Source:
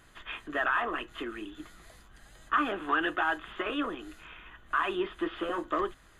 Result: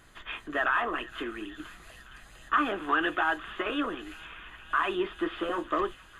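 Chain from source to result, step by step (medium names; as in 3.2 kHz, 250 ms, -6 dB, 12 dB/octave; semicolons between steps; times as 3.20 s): feedback echo behind a high-pass 466 ms, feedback 73%, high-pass 2.3 kHz, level -12.5 dB; trim +1.5 dB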